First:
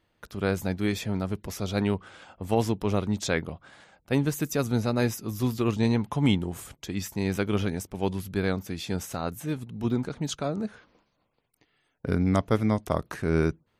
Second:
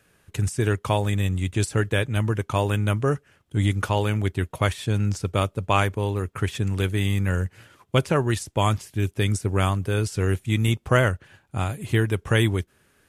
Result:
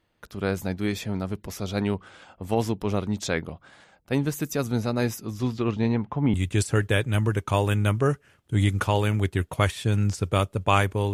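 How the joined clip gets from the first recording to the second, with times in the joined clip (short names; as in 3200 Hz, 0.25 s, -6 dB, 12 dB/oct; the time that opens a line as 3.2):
first
5.25–6.34 LPF 8700 Hz -> 1400 Hz
6.34 switch to second from 1.36 s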